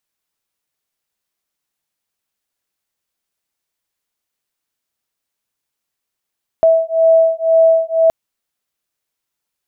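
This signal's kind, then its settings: beating tones 652 Hz, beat 2 Hz, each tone -12 dBFS 1.47 s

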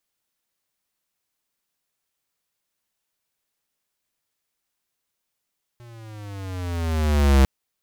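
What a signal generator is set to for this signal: gliding synth tone square, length 1.65 s, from 121 Hz, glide -10.5 st, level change +31.5 dB, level -13 dB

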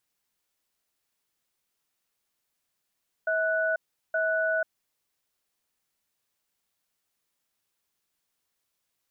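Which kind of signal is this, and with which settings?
cadence 644 Hz, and 1480 Hz, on 0.49 s, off 0.38 s, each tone -26 dBFS 1.67 s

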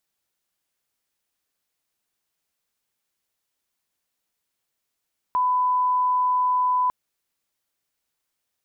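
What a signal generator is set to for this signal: line-up tone -18 dBFS 1.55 s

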